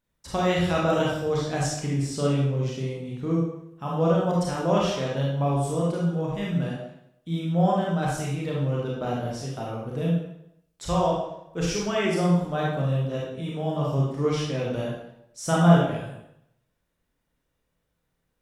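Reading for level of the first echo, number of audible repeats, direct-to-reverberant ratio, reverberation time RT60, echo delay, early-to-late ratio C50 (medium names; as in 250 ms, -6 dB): no echo, no echo, -4.5 dB, 0.80 s, no echo, 0.0 dB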